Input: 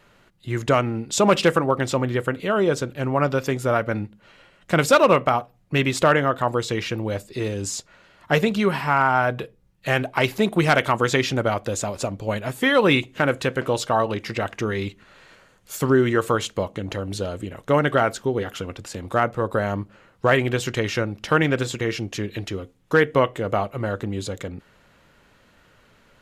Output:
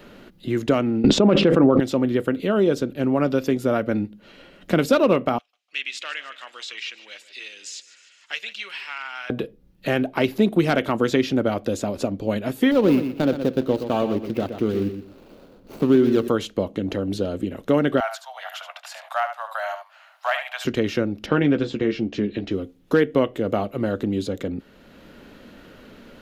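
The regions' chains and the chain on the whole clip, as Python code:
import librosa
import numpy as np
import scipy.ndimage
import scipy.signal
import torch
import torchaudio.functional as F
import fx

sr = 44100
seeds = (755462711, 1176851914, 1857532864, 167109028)

y = fx.chain(x, sr, fx.spacing_loss(db_at_10k=21),
    fx.env_flatten(amount_pct=100), at=(1.04, 1.8))
y = fx.chain(y, sr, fx.cheby1_bandpass(low_hz=2500.0, high_hz=7600.0, order=2),
    fx.echo_feedback(ms=151, feedback_pct=48, wet_db=-17.0), at=(5.38, 9.3))
y = fx.chain(y, sr, fx.median_filter(points=25),
    fx.echo_feedback(ms=121, feedback_pct=20, wet_db=-10.0), at=(12.71, 16.28))
y = fx.chain(y, sr, fx.steep_highpass(hz=640.0, slope=96),
    fx.echo_single(ms=73, db=-9.5), at=(18.0, 20.65))
y = fx.chain(y, sr, fx.air_absorb(metres=140.0),
    fx.doubler(ms=14.0, db=-8.0), at=(21.26, 22.51))
y = fx.graphic_eq_10(y, sr, hz=(125, 250, 1000, 2000, 8000), db=(-7, 7, -7, -5, -10))
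y = fx.band_squash(y, sr, depth_pct=40)
y = F.gain(torch.from_numpy(y), 1.0).numpy()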